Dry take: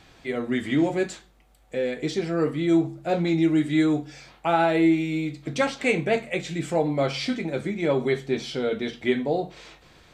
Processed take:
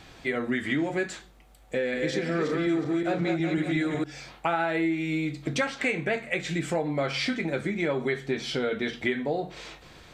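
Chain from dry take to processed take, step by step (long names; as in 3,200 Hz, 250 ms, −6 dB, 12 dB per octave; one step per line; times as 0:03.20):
0:01.75–0:04.04: feedback delay that plays each chunk backwards 183 ms, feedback 59%, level −3.5 dB
dynamic equaliser 1,700 Hz, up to +8 dB, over −44 dBFS, Q 1.4
downward compressor 4 to 1, threshold −29 dBFS, peak gain reduction 13 dB
level +3.5 dB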